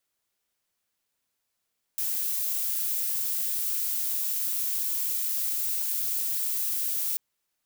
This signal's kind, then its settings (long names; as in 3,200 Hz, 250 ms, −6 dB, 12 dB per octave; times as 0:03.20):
noise violet, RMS −28.5 dBFS 5.19 s